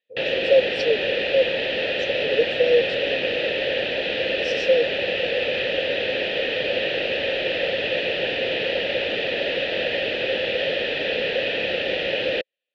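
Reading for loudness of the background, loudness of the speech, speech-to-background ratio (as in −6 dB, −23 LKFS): −23.0 LKFS, −23.5 LKFS, −0.5 dB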